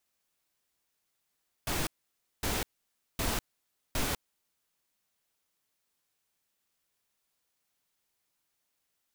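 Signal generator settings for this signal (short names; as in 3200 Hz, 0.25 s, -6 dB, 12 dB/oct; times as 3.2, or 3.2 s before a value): noise bursts pink, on 0.20 s, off 0.56 s, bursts 4, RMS -31 dBFS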